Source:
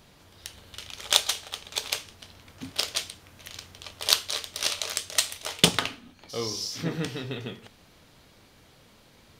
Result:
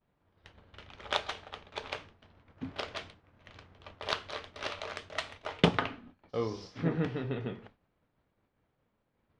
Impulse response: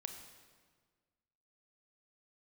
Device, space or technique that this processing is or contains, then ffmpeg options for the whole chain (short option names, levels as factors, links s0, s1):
hearing-loss simulation: -af "lowpass=1700,agate=range=0.0224:threshold=0.00562:ratio=3:detection=peak"